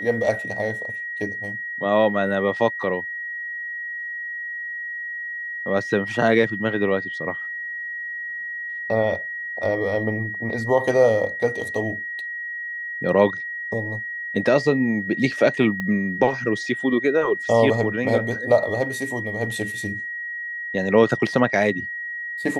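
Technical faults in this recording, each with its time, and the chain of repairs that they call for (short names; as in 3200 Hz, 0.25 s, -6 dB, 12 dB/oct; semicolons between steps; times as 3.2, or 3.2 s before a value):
tone 1900 Hz -28 dBFS
15.8 pop -15 dBFS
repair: de-click; notch 1900 Hz, Q 30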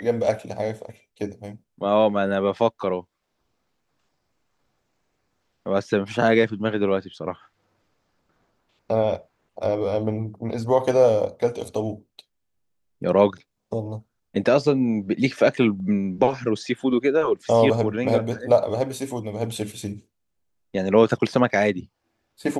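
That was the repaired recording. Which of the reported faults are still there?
15.8 pop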